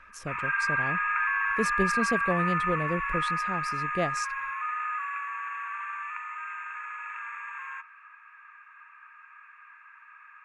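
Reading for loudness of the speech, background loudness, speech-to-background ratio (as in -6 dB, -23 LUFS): -33.5 LUFS, -29.5 LUFS, -4.0 dB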